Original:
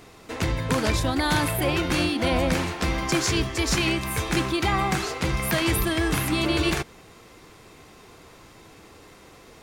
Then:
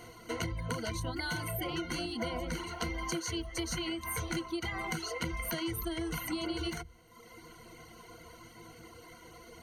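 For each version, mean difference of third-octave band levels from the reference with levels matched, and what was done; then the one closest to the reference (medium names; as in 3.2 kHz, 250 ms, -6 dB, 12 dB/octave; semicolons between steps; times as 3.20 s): 5.5 dB: reverb removal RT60 0.9 s; rippled EQ curve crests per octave 1.9, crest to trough 17 dB; compression 10:1, threshold -28 dBFS, peak gain reduction 14.5 dB; trim -4.5 dB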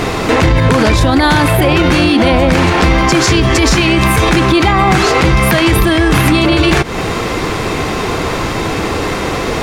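7.5 dB: compression, threshold -33 dBFS, peak gain reduction 14 dB; low-pass 3.6 kHz 6 dB/octave; loudness maximiser +34 dB; trim -1 dB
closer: first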